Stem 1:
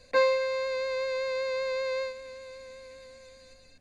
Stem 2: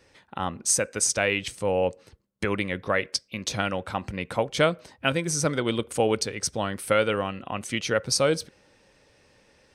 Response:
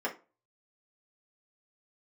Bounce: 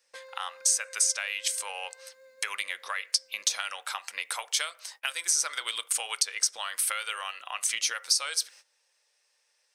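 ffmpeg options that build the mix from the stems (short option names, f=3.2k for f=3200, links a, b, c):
-filter_complex "[0:a]highshelf=f=2.3k:g=-10.5,acompressor=threshold=-33dB:ratio=6,volume=-13dB,asplit=2[a][b];[b]volume=-5.5dB[c];[1:a]highpass=880,acompressor=threshold=-30dB:ratio=2,volume=2.5dB,asplit=3[d][e][f];[e]volume=-17.5dB[g];[f]apad=whole_len=167817[h];[a][h]sidechaincompress=threshold=-35dB:ratio=8:attack=48:release=1470[i];[2:a]atrim=start_sample=2205[j];[c][g]amix=inputs=2:normalize=0[k];[k][j]afir=irnorm=-1:irlink=0[l];[i][d][l]amix=inputs=3:normalize=0,agate=range=-17dB:threshold=-54dB:ratio=16:detection=peak,bass=f=250:g=-14,treble=f=4k:g=12,acrossover=split=900|4200[m][n][o];[m]acompressor=threshold=-55dB:ratio=4[p];[n]acompressor=threshold=-30dB:ratio=4[q];[o]acompressor=threshold=-26dB:ratio=4[r];[p][q][r]amix=inputs=3:normalize=0"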